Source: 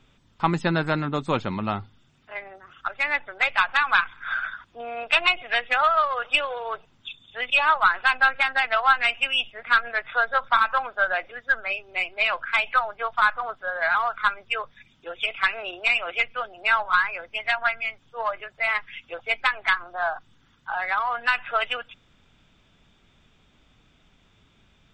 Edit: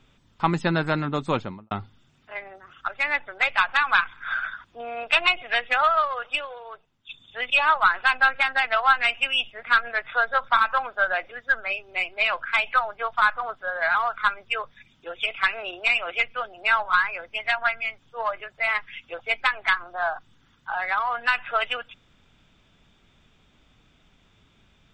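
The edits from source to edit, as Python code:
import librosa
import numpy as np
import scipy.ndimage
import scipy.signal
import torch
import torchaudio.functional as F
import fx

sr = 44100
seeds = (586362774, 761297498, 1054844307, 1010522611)

y = fx.studio_fade_out(x, sr, start_s=1.3, length_s=0.41)
y = fx.edit(y, sr, fx.fade_out_to(start_s=5.93, length_s=1.16, curve='qua', floor_db=-12.5), tone=tone)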